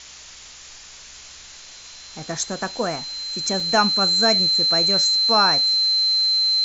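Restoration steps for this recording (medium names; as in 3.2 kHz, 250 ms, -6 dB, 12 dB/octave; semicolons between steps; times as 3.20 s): de-hum 64.3 Hz, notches 4; band-stop 4.1 kHz, Q 30; interpolate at 3.60 s, 3.3 ms; noise print and reduce 24 dB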